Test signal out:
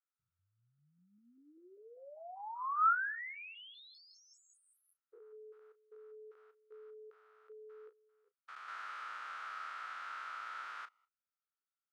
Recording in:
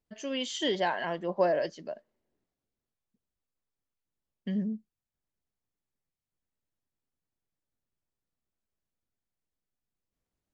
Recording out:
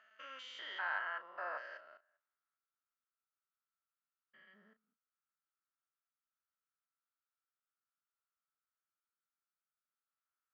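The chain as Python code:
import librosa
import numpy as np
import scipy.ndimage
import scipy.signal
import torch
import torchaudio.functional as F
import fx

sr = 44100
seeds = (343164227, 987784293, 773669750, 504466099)

y = fx.spec_steps(x, sr, hold_ms=200)
y = fx.ladder_bandpass(y, sr, hz=1400.0, resonance_pct=80)
y = fx.doubler(y, sr, ms=34.0, db=-12)
y = y * 10.0 ** (6.5 / 20.0)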